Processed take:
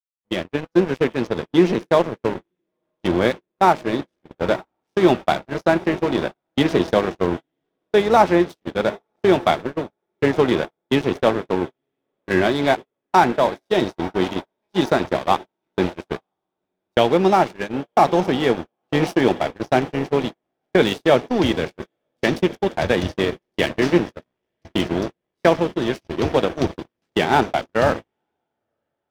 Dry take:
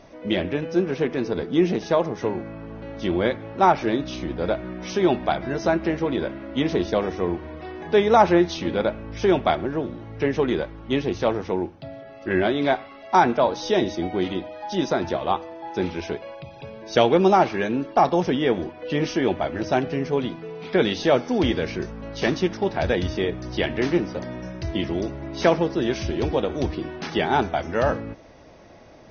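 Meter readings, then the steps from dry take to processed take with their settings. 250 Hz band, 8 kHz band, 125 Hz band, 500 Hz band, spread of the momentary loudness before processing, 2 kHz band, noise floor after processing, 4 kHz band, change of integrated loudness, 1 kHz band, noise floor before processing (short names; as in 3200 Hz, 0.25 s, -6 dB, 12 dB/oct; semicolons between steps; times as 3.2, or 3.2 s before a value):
+2.5 dB, n/a, +2.0 dB, +2.5 dB, 12 LU, +4.0 dB, -81 dBFS, +3.0 dB, +3.0 dB, +2.5 dB, -43 dBFS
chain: HPF 80 Hz 24 dB/oct; crossover distortion -31 dBFS; AGC gain up to 8 dB; diffused feedback echo 0.975 s, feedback 59%, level -16 dB; gate -23 dBFS, range -44 dB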